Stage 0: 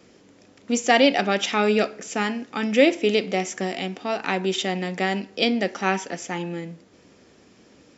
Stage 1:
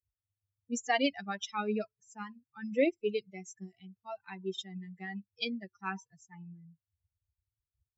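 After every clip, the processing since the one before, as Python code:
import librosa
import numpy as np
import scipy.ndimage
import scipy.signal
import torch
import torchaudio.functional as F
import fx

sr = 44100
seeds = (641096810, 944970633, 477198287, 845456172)

y = fx.bin_expand(x, sr, power=3.0)
y = F.gain(torch.from_numpy(y), -7.5).numpy()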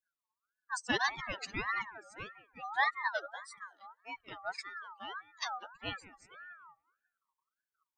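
y = fx.echo_wet_bandpass(x, sr, ms=185, feedback_pct=33, hz=510.0, wet_db=-12)
y = fx.ring_lfo(y, sr, carrier_hz=1300.0, swing_pct=25, hz=1.7)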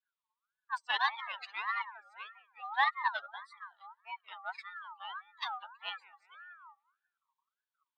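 y = fx.cheby_harmonics(x, sr, harmonics=(2, 7), levels_db=(-23, -30), full_scale_db=-16.5)
y = fx.ladder_highpass(y, sr, hz=810.0, resonance_pct=55)
y = fx.high_shelf_res(y, sr, hz=4800.0, db=-10.0, q=3.0)
y = F.gain(torch.from_numpy(y), 6.5).numpy()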